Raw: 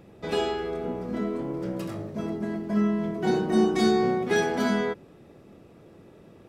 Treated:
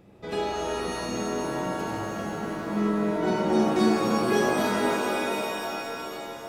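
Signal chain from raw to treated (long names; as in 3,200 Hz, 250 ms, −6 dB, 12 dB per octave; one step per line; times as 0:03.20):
echo with a time of its own for lows and highs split 590 Hz, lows 179 ms, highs 92 ms, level −13.5 dB
reverb with rising layers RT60 3.5 s, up +7 semitones, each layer −2 dB, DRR 0 dB
level −4 dB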